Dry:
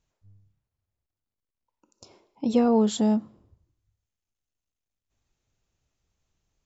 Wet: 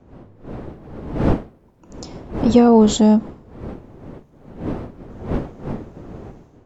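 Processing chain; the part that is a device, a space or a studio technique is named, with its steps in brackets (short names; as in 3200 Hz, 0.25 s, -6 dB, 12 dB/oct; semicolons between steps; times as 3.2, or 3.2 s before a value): smartphone video outdoors (wind noise 340 Hz -41 dBFS; AGC gain up to 14.5 dB; AAC 96 kbps 44100 Hz)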